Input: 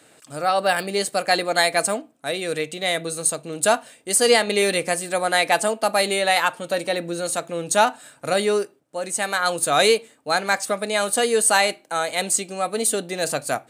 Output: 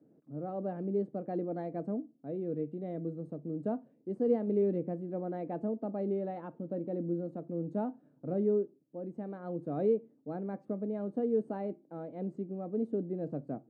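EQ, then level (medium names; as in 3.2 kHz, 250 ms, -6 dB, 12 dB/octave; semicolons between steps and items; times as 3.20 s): Butterworth band-pass 220 Hz, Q 0.99; -2.0 dB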